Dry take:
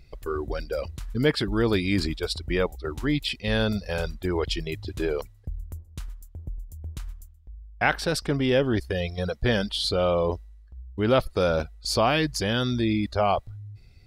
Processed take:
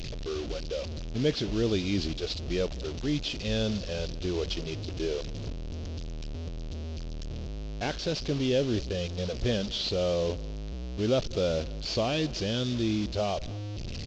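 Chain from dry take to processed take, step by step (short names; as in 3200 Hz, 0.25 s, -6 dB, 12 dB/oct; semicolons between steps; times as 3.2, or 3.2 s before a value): delta modulation 32 kbps, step -25.5 dBFS; band shelf 1300 Hz -10 dB; echo 0.206 s -21.5 dB; gain -4 dB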